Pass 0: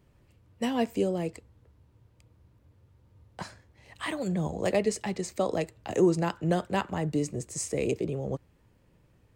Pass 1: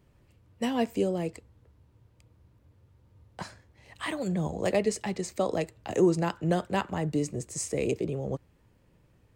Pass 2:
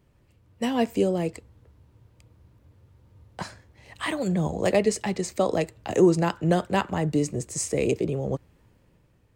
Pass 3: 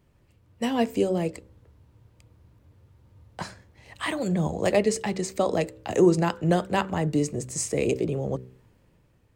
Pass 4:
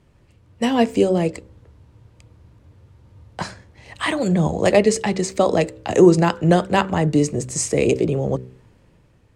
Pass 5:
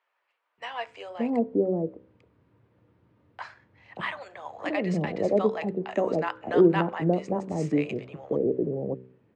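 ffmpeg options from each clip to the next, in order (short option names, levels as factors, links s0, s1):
-af anull
-af "dynaudnorm=f=140:g=9:m=1.68"
-af "bandreject=f=63.69:t=h:w=4,bandreject=f=127.38:t=h:w=4,bandreject=f=191.07:t=h:w=4,bandreject=f=254.76:t=h:w=4,bandreject=f=318.45:t=h:w=4,bandreject=f=382.14:t=h:w=4,bandreject=f=445.83:t=h:w=4,bandreject=f=509.52:t=h:w=4,bandreject=f=573.21:t=h:w=4"
-af "lowpass=9900,volume=2.24"
-filter_complex "[0:a]highpass=190,lowpass=2300,acrossover=split=750[s0][s1];[s0]adelay=580[s2];[s2][s1]amix=inputs=2:normalize=0,volume=0.501"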